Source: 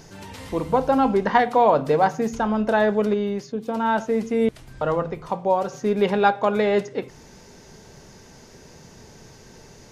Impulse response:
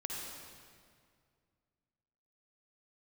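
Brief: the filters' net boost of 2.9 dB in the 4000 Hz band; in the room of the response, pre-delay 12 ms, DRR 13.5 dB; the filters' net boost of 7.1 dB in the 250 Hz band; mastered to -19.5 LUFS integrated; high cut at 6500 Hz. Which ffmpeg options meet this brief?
-filter_complex "[0:a]lowpass=6.5k,equalizer=f=250:t=o:g=8.5,equalizer=f=4k:t=o:g=4,asplit=2[a][b];[1:a]atrim=start_sample=2205,adelay=12[c];[b][c]afir=irnorm=-1:irlink=0,volume=-14.5dB[d];[a][d]amix=inputs=2:normalize=0,volume=-1dB"

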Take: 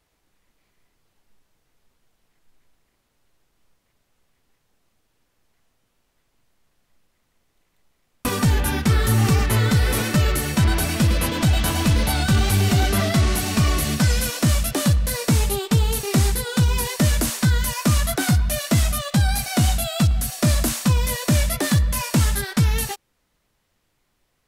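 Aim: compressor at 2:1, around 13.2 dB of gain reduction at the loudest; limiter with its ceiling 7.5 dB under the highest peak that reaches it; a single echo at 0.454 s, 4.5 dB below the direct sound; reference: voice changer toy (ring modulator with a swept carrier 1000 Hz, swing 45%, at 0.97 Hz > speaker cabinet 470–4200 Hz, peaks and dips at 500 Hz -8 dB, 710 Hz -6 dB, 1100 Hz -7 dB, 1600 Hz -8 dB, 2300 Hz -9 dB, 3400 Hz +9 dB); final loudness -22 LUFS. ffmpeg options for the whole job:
-af "acompressor=threshold=-39dB:ratio=2,alimiter=level_in=2dB:limit=-24dB:level=0:latency=1,volume=-2dB,aecho=1:1:454:0.596,aeval=exprs='val(0)*sin(2*PI*1000*n/s+1000*0.45/0.97*sin(2*PI*0.97*n/s))':c=same,highpass=470,equalizer=f=500:t=q:w=4:g=-8,equalizer=f=710:t=q:w=4:g=-6,equalizer=f=1.1k:t=q:w=4:g=-7,equalizer=f=1.6k:t=q:w=4:g=-8,equalizer=f=2.3k:t=q:w=4:g=-9,equalizer=f=3.4k:t=q:w=4:g=9,lowpass=f=4.2k:w=0.5412,lowpass=f=4.2k:w=1.3066,volume=18.5dB"

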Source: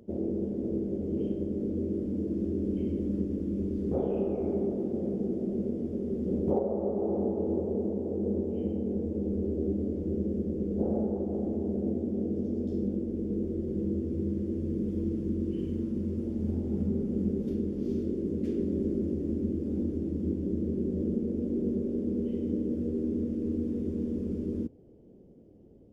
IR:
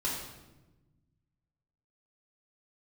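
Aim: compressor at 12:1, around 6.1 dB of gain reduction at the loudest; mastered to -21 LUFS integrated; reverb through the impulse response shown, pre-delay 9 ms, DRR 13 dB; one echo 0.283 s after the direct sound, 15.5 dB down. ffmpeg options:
-filter_complex "[0:a]acompressor=threshold=-30dB:ratio=12,aecho=1:1:283:0.168,asplit=2[a][b];[1:a]atrim=start_sample=2205,adelay=9[c];[b][c]afir=irnorm=-1:irlink=0,volume=-19dB[d];[a][d]amix=inputs=2:normalize=0,volume=14dB"

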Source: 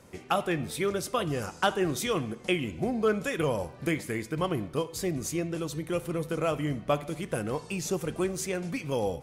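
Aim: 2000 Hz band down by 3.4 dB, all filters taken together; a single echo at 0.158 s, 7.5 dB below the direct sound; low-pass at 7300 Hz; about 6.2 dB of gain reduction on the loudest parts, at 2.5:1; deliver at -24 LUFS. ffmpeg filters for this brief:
-af "lowpass=7.3k,equalizer=f=2k:t=o:g=-4.5,acompressor=threshold=-31dB:ratio=2.5,aecho=1:1:158:0.422,volume=10dB"

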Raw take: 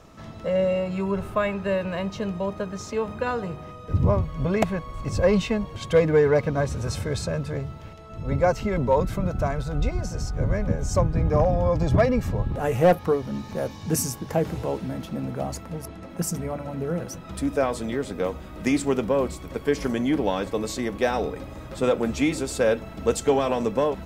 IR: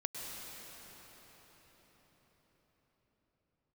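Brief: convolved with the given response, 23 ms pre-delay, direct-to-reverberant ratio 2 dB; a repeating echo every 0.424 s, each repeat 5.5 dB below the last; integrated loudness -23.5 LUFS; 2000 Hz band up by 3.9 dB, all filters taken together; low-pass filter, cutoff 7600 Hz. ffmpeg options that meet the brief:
-filter_complex "[0:a]lowpass=7.6k,equalizer=f=2k:t=o:g=5,aecho=1:1:424|848|1272|1696|2120|2544|2968:0.531|0.281|0.149|0.079|0.0419|0.0222|0.0118,asplit=2[a][b];[1:a]atrim=start_sample=2205,adelay=23[c];[b][c]afir=irnorm=-1:irlink=0,volume=-3.5dB[d];[a][d]amix=inputs=2:normalize=0,volume=-2dB"

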